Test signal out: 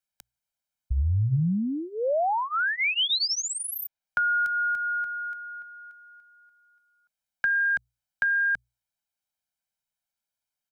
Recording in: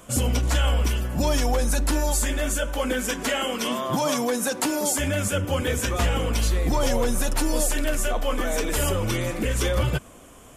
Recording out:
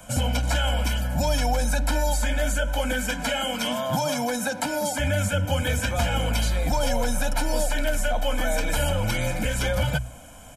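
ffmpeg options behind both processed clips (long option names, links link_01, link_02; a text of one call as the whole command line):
ffmpeg -i in.wav -filter_complex "[0:a]bandreject=frequency=60:width_type=h:width=6,bandreject=frequency=120:width_type=h:width=6,aecho=1:1:1.3:0.92,acrossover=split=170|370|4200[link_01][link_02][link_03][link_04];[link_01]acompressor=threshold=-23dB:ratio=4[link_05];[link_02]acompressor=threshold=-33dB:ratio=4[link_06];[link_03]acompressor=threshold=-25dB:ratio=4[link_07];[link_04]acompressor=threshold=-34dB:ratio=4[link_08];[link_05][link_06][link_07][link_08]amix=inputs=4:normalize=0" out.wav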